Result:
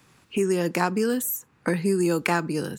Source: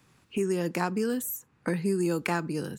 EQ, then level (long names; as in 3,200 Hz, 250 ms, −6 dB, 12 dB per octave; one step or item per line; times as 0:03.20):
low-shelf EQ 250 Hz −4 dB
+6.0 dB